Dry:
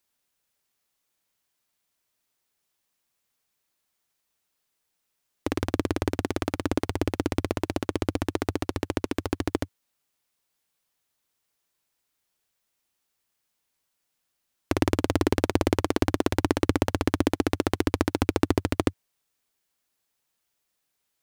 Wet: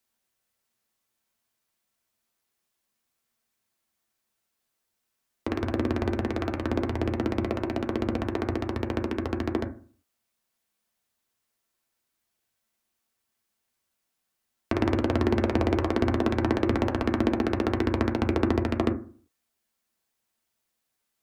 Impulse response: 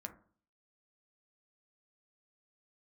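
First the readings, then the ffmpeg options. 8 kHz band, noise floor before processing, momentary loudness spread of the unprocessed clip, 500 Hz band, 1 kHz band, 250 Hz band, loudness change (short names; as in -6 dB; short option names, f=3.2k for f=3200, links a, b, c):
under -10 dB, -79 dBFS, 6 LU, 0.0 dB, -0.5 dB, +0.5 dB, 0.0 dB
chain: -filter_complex "[0:a]acrossover=split=5100[a][b];[b]acompressor=threshold=-50dB:ratio=4:attack=1:release=60[c];[a][c]amix=inputs=2:normalize=0,acrossover=split=200|1400|6700[d][e][f][g];[g]acrusher=bits=2:mode=log:mix=0:aa=0.000001[h];[d][e][f][h]amix=inputs=4:normalize=0[i];[1:a]atrim=start_sample=2205,asetrate=48510,aresample=44100[j];[i][j]afir=irnorm=-1:irlink=0,volume=3.5dB"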